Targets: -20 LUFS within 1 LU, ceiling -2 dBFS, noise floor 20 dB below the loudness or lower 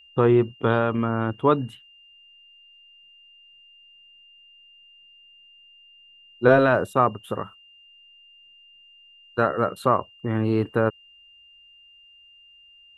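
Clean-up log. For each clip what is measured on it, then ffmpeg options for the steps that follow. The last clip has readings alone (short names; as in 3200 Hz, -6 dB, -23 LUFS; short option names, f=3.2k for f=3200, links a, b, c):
steady tone 2800 Hz; tone level -50 dBFS; loudness -22.5 LUFS; peak -3.0 dBFS; loudness target -20.0 LUFS
-> -af "bandreject=f=2.8k:w=30"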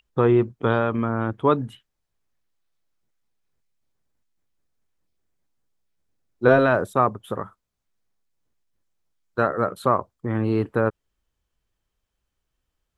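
steady tone none; loudness -22.5 LUFS; peak -3.0 dBFS; loudness target -20.0 LUFS
-> -af "volume=2.5dB,alimiter=limit=-2dB:level=0:latency=1"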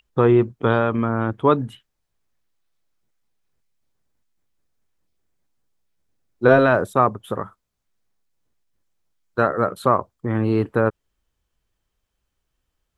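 loudness -20.0 LUFS; peak -2.0 dBFS; noise floor -78 dBFS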